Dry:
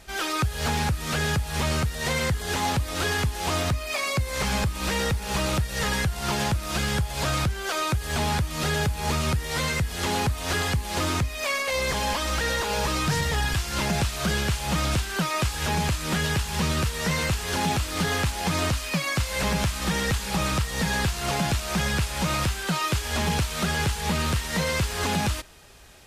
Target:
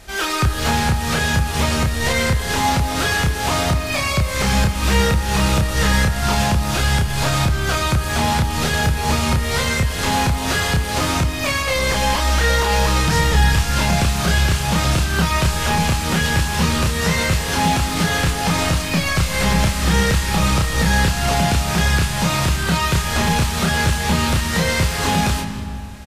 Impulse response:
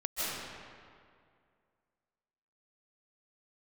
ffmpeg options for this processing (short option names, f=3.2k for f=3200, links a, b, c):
-filter_complex "[0:a]asplit=2[a][b];[b]adelay=30,volume=-3.5dB[c];[a][c]amix=inputs=2:normalize=0,asplit=2[d][e];[1:a]atrim=start_sample=2205,lowshelf=f=140:g=11.5[f];[e][f]afir=irnorm=-1:irlink=0,volume=-16.5dB[g];[d][g]amix=inputs=2:normalize=0,volume=4dB"